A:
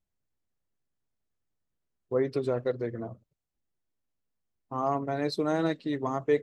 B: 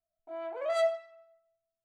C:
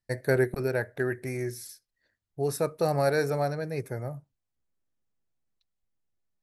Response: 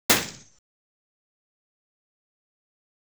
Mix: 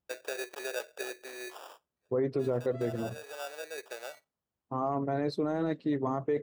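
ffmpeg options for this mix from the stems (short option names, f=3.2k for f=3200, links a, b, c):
-filter_complex "[0:a]highpass=61,highshelf=f=2.2k:g=-11.5,volume=2dB,asplit=2[a][b];[1:a]adelay=2050,volume=-17dB[c];[2:a]acompressor=threshold=-25dB:ratio=6,acrusher=samples=21:mix=1:aa=0.000001,highpass=f=470:w=0.5412,highpass=f=470:w=1.3066,volume=-2.5dB[d];[b]apad=whole_len=283552[e];[d][e]sidechaincompress=threshold=-45dB:ratio=3:attack=16:release=666[f];[a][c][f]amix=inputs=3:normalize=0,alimiter=limit=-21.5dB:level=0:latency=1:release=10"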